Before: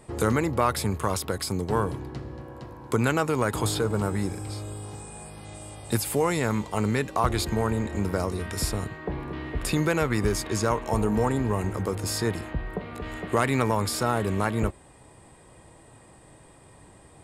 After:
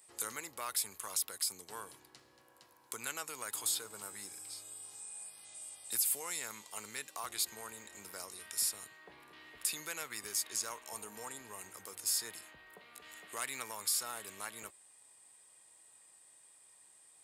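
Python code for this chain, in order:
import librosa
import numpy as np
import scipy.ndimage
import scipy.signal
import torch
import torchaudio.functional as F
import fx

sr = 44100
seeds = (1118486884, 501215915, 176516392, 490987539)

y = np.diff(x, prepend=0.0)
y = F.gain(torch.from_numpy(y), -1.5).numpy()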